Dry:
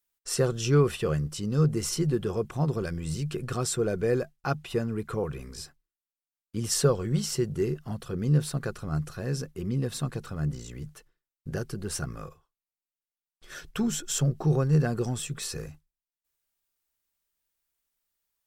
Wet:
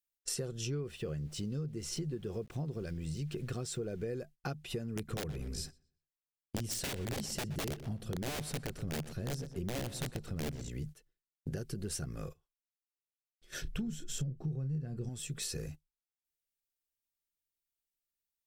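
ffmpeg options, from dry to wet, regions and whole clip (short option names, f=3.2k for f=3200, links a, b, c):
-filter_complex "[0:a]asettb=1/sr,asplit=3[a][b][c];[a]atrim=end=0.674[d];[b]atrim=start=0.67:end=4.11,asetpts=PTS-STARTPTS,afade=t=in:d=0.004:c=qsin,afade=t=out:st=3.436:d=0.004:c=qsin,highshelf=f=8.8k:g=-11.5,aeval=exprs='val(0)*gte(abs(val(0)),0.00355)':c=same[e];[c]atrim=start=4.106[f];[d][e]acrossfade=d=0.004:c1=hsin:c2=qsin[g];[g][f]acrossfade=d=0.004:c1=qsin:c2=hsin,asettb=1/sr,asplit=3[h][i][j];[h]atrim=end=4.964[k];[i]atrim=start=4.96:end=10.69,asetpts=PTS-STARTPTS,afade=t=in:d=0.004:c=qsin,afade=t=out:st=5.726:d=0.004:c=qsin,lowshelf=f=360:g=5.5,aeval=exprs='(mod(8.91*val(0)+1,2)-1)/8.91':c=same,asplit=2[l][m];[m]adelay=122,lowpass=f=4.2k:p=1,volume=-16dB,asplit=2[n][o];[o]adelay=122,lowpass=f=4.2k:p=1,volume=0.33,asplit=2[p][q];[q]adelay=122,lowpass=f=4.2k:p=1,volume=0.33[r];[l][n][p][r]amix=inputs=4:normalize=0,atrim=end_sample=252693[s];[j]atrim=start=10.686[t];[k][s]acrossfade=d=0.004:c1=hsin:c2=qsin[u];[u][t]acrossfade=d=0.004:c1=qsin:c2=hsin,asettb=1/sr,asplit=3[v][w][x];[v]atrim=end=13.624[y];[w]atrim=start=13.62:end=15.09,asetpts=PTS-STARTPTS,afade=t=in:d=0.004:c=qsin,afade=t=out:st=1.466:d=0.004:c=qsin,bass=f=250:g=11,treble=f=4k:g=-5,asplit=2[z][aa];[aa]adelay=31,volume=-10dB[ab];[z][ab]amix=inputs=2:normalize=0,atrim=end_sample=64827[ac];[x]atrim=start=15.086[ad];[y][ac]acrossfade=d=0.004:c1=hsin:c2=qsin[ae];[ae][ad]acrossfade=d=0.004:c1=qsin:c2=hsin,agate=range=-13dB:threshold=-43dB:ratio=16:detection=peak,equalizer=f=1.1k:t=o:w=1.1:g=-10,acompressor=threshold=-38dB:ratio=10,volume=3dB"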